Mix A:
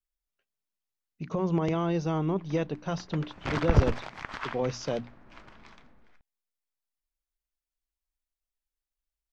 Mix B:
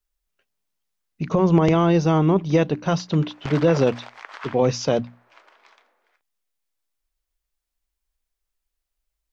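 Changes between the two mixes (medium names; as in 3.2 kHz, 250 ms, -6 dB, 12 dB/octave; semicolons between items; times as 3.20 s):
speech +10.5 dB; background: add high-pass 440 Hz 24 dB/octave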